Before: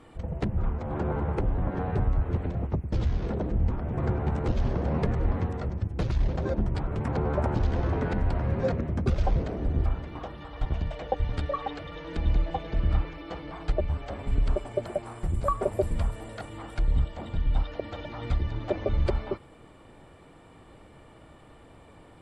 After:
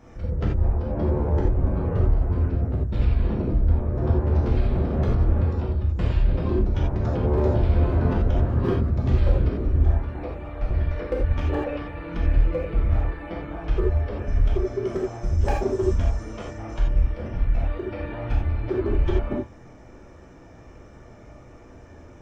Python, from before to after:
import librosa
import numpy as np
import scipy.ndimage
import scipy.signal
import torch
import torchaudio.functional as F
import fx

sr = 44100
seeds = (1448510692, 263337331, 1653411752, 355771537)

y = np.clip(x, -10.0 ** (-20.5 / 20.0), 10.0 ** (-20.5 / 20.0))
y = fx.formant_shift(y, sr, semitones=-6)
y = fx.rev_gated(y, sr, seeds[0], gate_ms=110, shape='flat', drr_db=-3.5)